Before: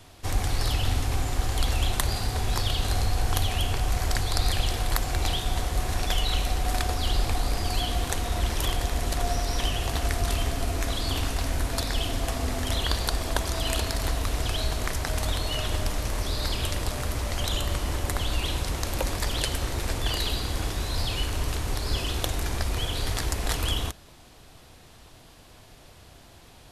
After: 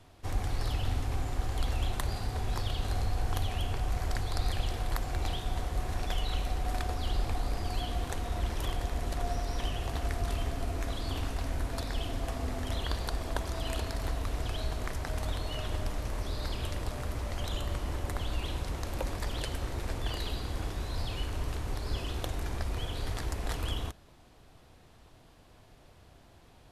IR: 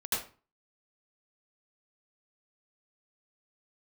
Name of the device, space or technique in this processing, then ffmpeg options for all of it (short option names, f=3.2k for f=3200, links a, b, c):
behind a face mask: -af "highshelf=f=2.5k:g=-8,volume=-5.5dB"